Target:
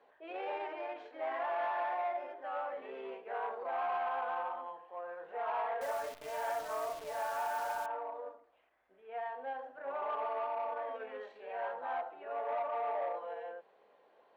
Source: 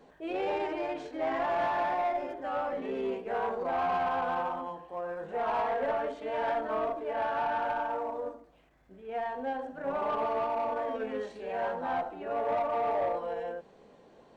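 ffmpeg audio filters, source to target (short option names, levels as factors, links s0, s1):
-filter_complex "[0:a]acrossover=split=450 3600:gain=0.0631 1 0.0891[s0][s1][s2];[s0][s1][s2]amix=inputs=3:normalize=0,asettb=1/sr,asplit=3[s3][s4][s5];[s3]atrim=end=5.814[s6];[s4]atrim=start=5.81:end=7.86,asetpts=PTS-STARTPTS,afade=t=in:d=0.004:c=qsin,afade=t=out:st=2.046:d=0.004:c=qsin,acrusher=bits=8:dc=4:mix=0:aa=0.000001[s7];[s5]atrim=start=7.856[s8];[s6][s7]acrossfade=d=0.004:c1=hsin:c2=qsin[s9];[s9][s8]acrossfade=d=0.004:c1=qsin:c2=hsin,volume=0.596"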